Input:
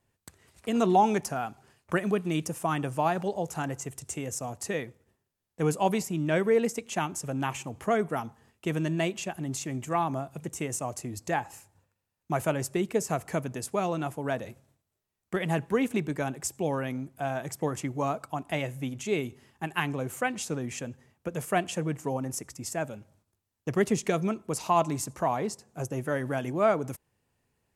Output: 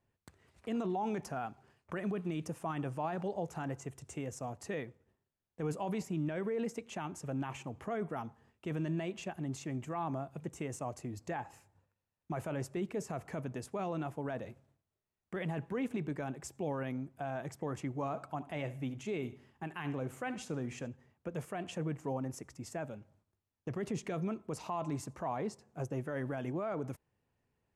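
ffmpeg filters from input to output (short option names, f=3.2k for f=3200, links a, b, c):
-filter_complex "[0:a]asettb=1/sr,asplit=3[a][b][c];[a]atrim=end=17.944[d];[b]atrim=start=17.94:end=20.88,asetpts=PTS-STARTPTS,afade=t=in:d=0.004:c=qsin,afade=t=out:st=2.936:d=0.004:c=qsin,aecho=1:1:74|148|222:0.126|0.0466|0.0172,atrim=end_sample=129654[e];[c]atrim=start=20.876[f];[d][e]acrossfade=d=0.004:c1=hsin:c2=qsin[g];[g][f]acrossfade=d=0.004:c1=qsin:c2=hsin,lowpass=f=2.4k:p=1,alimiter=limit=-23.5dB:level=0:latency=1:release=17,volume=-4.5dB"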